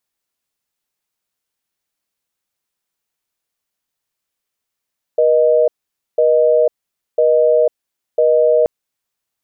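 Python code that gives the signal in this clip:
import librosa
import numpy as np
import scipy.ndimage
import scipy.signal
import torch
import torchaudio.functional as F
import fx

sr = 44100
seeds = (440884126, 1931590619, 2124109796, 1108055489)

y = fx.call_progress(sr, length_s=3.48, kind='busy tone', level_db=-12.0)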